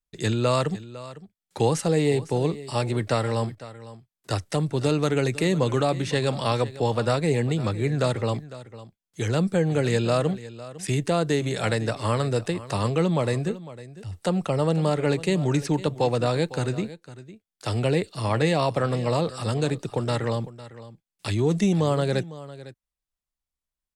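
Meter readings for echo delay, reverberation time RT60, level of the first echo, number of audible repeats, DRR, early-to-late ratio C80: 504 ms, no reverb, -16.5 dB, 1, no reverb, no reverb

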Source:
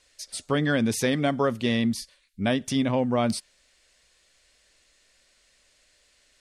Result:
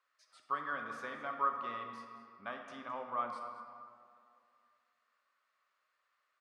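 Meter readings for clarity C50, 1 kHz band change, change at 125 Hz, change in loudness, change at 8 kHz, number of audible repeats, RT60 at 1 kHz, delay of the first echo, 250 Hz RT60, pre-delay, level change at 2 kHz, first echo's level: 4.5 dB, -4.0 dB, -33.5 dB, -14.0 dB, under -30 dB, 1, 2.3 s, 216 ms, 2.2 s, 15 ms, -11.5 dB, -15.0 dB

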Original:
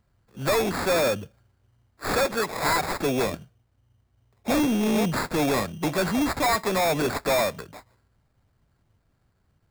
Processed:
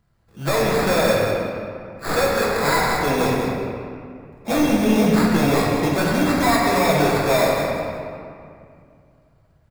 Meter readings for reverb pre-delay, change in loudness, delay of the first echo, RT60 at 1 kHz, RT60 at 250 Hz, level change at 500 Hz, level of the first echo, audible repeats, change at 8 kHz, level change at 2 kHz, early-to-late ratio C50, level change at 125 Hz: 6 ms, +5.5 dB, 184 ms, 2.3 s, 2.7 s, +6.0 dB, -9.0 dB, 1, +3.0 dB, +5.5 dB, -1.0 dB, +8.5 dB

